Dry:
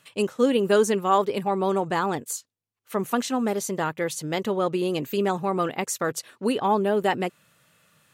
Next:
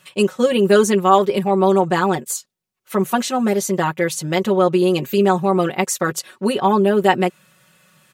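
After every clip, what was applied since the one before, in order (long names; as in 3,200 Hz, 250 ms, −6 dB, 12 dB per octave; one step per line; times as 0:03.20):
comb filter 5.4 ms, depth 84%
level +4.5 dB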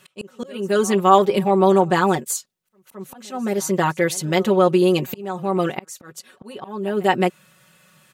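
volume swells 636 ms
backwards echo 216 ms −23.5 dB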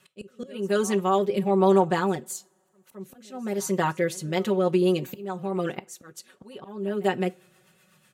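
rotating-speaker cabinet horn 1 Hz, later 8 Hz, at 0:04.18
coupled-rooms reverb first 0.25 s, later 2.5 s, from −28 dB, DRR 16 dB
level −4.5 dB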